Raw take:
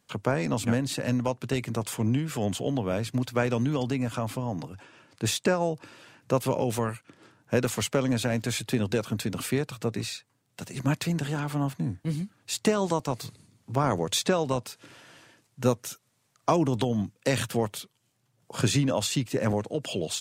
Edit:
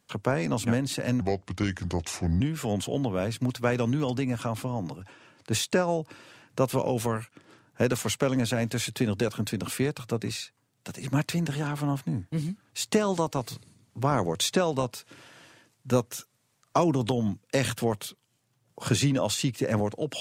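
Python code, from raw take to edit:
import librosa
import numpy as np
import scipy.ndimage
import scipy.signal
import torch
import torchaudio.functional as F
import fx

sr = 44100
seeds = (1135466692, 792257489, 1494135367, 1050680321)

y = fx.edit(x, sr, fx.speed_span(start_s=1.21, length_s=0.92, speed=0.77), tone=tone)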